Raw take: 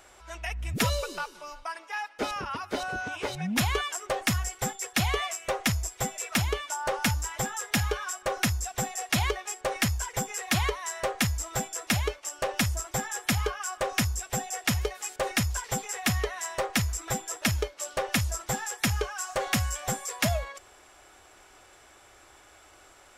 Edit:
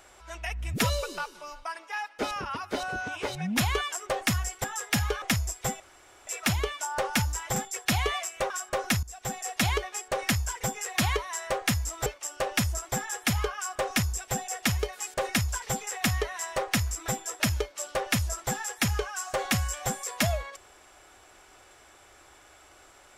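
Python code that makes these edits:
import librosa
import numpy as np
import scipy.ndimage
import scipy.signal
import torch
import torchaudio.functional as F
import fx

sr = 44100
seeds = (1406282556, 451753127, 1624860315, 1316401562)

y = fx.edit(x, sr, fx.swap(start_s=4.64, length_s=0.94, other_s=7.45, other_length_s=0.58),
    fx.insert_room_tone(at_s=6.16, length_s=0.47),
    fx.fade_in_from(start_s=8.56, length_s=0.57, curve='qsin', floor_db=-17.5),
    fx.cut(start_s=11.59, length_s=0.49), tone=tone)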